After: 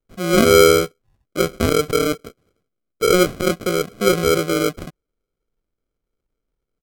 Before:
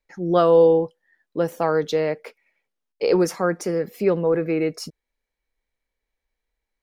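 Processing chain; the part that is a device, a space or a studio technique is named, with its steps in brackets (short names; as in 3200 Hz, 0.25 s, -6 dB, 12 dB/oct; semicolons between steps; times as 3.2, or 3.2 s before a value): crushed at another speed (playback speed 1.25×; sample-and-hold 39×; playback speed 0.8×); gain +3 dB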